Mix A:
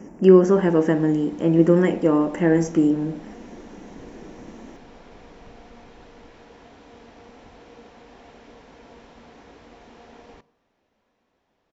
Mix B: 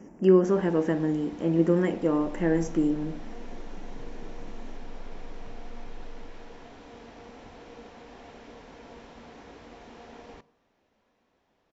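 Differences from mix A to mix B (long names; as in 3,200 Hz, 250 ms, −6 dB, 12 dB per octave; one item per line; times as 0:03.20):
speech −6.5 dB
second sound: remove high-pass filter 46 Hz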